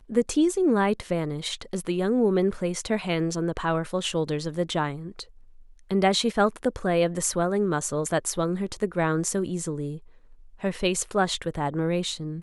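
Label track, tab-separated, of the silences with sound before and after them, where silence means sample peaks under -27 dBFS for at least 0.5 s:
5.210000	5.910000	silence
9.900000	10.640000	silence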